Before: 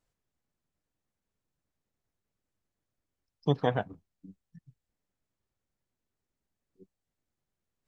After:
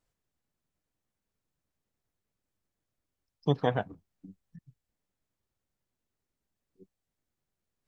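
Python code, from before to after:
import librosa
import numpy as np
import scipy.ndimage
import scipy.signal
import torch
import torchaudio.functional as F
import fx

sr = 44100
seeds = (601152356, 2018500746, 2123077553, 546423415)

y = fx.band_squash(x, sr, depth_pct=70, at=(3.91, 4.59))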